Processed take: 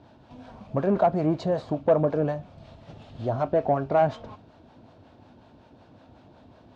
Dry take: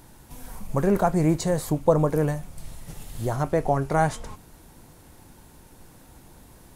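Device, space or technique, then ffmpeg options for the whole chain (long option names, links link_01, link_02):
guitar amplifier with harmonic tremolo: -filter_complex "[0:a]acrossover=split=500[link_01][link_02];[link_01]aeval=exprs='val(0)*(1-0.5/2+0.5/2*cos(2*PI*5.4*n/s))':channel_layout=same[link_03];[link_02]aeval=exprs='val(0)*(1-0.5/2-0.5/2*cos(2*PI*5.4*n/s))':channel_layout=same[link_04];[link_03][link_04]amix=inputs=2:normalize=0,asoftclip=type=tanh:threshold=-16dB,highpass=88,equalizer=frequency=99:width_type=q:width=4:gain=5,equalizer=frequency=160:width_type=q:width=4:gain=-3,equalizer=frequency=250:width_type=q:width=4:gain=6,equalizer=frequency=640:width_type=q:width=4:gain=10,equalizer=frequency=2000:width_type=q:width=4:gain=-7,lowpass=frequency=4000:width=0.5412,lowpass=frequency=4000:width=1.3066"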